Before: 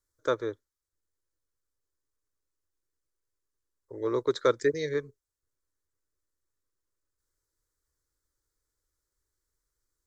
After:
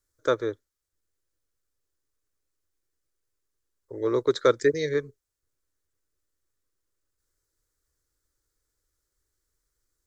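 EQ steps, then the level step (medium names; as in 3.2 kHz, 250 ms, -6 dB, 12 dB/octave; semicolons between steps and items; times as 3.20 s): peaking EQ 980 Hz -4 dB 0.39 oct; +4.0 dB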